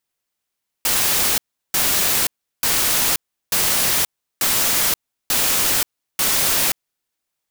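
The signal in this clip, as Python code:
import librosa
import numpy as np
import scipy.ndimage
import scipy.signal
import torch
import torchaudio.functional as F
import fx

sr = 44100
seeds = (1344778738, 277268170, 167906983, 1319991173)

y = fx.noise_burst(sr, seeds[0], colour='white', on_s=0.53, off_s=0.36, bursts=7, level_db=-18.0)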